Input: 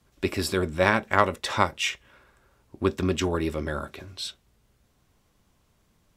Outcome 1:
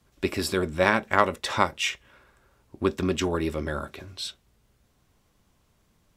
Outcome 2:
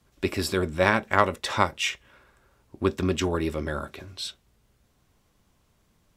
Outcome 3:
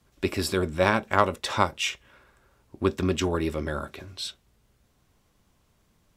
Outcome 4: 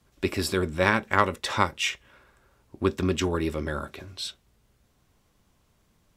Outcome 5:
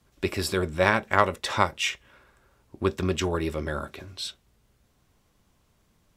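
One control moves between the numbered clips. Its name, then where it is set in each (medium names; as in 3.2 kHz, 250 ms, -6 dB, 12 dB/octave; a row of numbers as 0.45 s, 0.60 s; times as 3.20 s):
dynamic bell, frequency: 100 Hz, 9.7 kHz, 1.9 kHz, 670 Hz, 260 Hz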